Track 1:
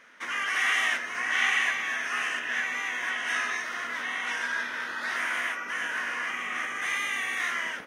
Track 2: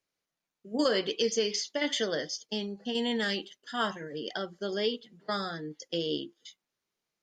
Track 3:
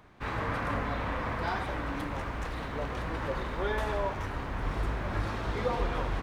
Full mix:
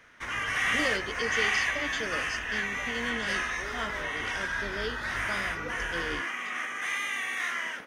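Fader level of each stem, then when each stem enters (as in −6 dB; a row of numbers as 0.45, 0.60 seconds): −2.0, −6.0, −10.5 decibels; 0.00, 0.00, 0.00 seconds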